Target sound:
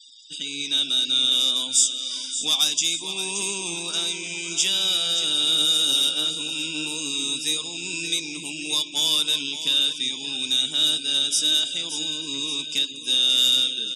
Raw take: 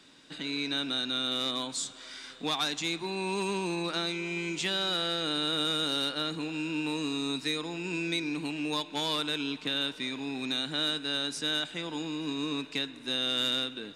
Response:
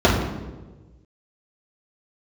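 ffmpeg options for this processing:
-filter_complex "[0:a]aexciter=amount=7.1:drive=7.5:freq=2.9k,asplit=2[a][b];[b]aecho=0:1:575|1150|1725|2300|2875:0.299|0.143|0.0688|0.033|0.0158[c];[a][c]amix=inputs=2:normalize=0,flanger=delay=7.2:depth=6.2:regen=73:speed=1.7:shape=sinusoidal,afftfilt=real='re*gte(hypot(re,im),0.00708)':imag='im*gte(hypot(re,im),0.00708)':win_size=1024:overlap=0.75,asuperstop=centerf=4200:order=8:qfactor=4.9"

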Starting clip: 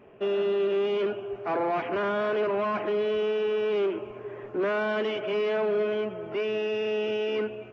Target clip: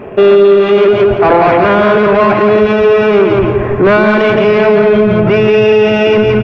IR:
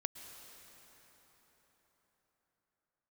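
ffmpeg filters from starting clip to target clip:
-af "highshelf=f=3k:g=-7,bandreject=f=3k:w=12,asubboost=boost=7:cutoff=140,atempo=1.2,asoftclip=type=tanh:threshold=-26.5dB,aeval=exprs='0.119*(cos(1*acos(clip(val(0)/0.119,-1,1)))-cos(1*PI/2))+0.00266*(cos(7*acos(clip(val(0)/0.119,-1,1)))-cos(7*PI/2))':c=same,aecho=1:1:170|340|510|680:0.631|0.183|0.0531|0.0154,alimiter=level_in=28.5dB:limit=-1dB:release=50:level=0:latency=1,volume=-1dB"

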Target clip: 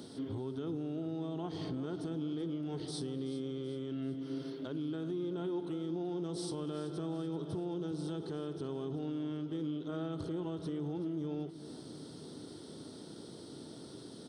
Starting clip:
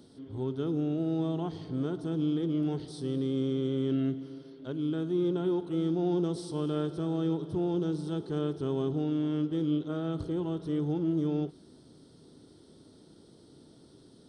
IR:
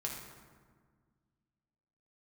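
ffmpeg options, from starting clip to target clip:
-filter_complex "[0:a]highpass=96,lowshelf=f=450:g=-3,acompressor=threshold=-43dB:ratio=4,alimiter=level_in=15.5dB:limit=-24dB:level=0:latency=1,volume=-15.5dB,asplit=2[a][b];[b]aecho=0:1:381|762|1143|1524:0.188|0.0866|0.0399|0.0183[c];[a][c]amix=inputs=2:normalize=0,volume=9dB"

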